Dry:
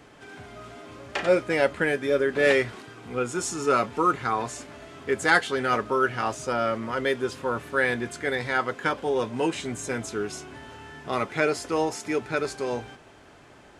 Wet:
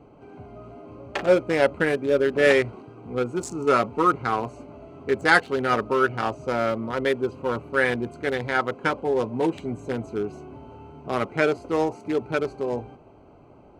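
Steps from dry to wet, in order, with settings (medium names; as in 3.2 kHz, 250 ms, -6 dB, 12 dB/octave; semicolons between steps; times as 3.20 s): local Wiener filter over 25 samples; trim +3 dB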